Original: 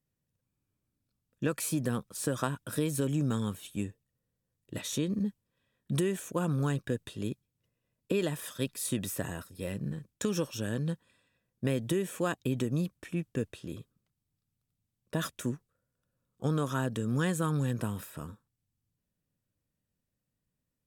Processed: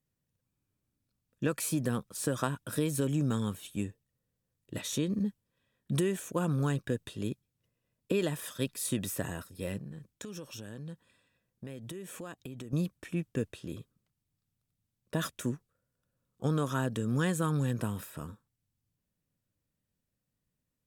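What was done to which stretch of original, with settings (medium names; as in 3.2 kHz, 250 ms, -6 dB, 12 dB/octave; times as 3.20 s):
9.78–12.73 s: compression 4:1, threshold -41 dBFS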